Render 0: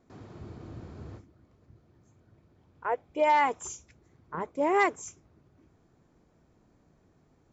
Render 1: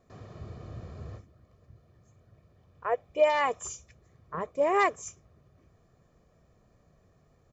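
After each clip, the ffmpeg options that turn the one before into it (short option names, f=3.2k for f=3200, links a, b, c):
-af "aecho=1:1:1.7:0.56"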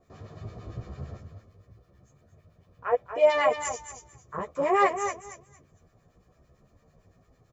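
-filter_complex "[0:a]aecho=1:1:235|470|705:0.376|0.0752|0.015,acrossover=split=1100[a][b];[a]aeval=exprs='val(0)*(1-0.7/2+0.7/2*cos(2*PI*8.9*n/s))':c=same[c];[b]aeval=exprs='val(0)*(1-0.7/2-0.7/2*cos(2*PI*8.9*n/s))':c=same[d];[c][d]amix=inputs=2:normalize=0,asplit=2[e][f];[f]adelay=11.4,afreqshift=0.91[g];[e][g]amix=inputs=2:normalize=1,volume=8dB"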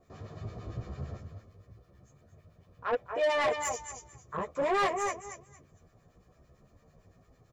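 -af "asoftclip=type=tanh:threshold=-23.5dB"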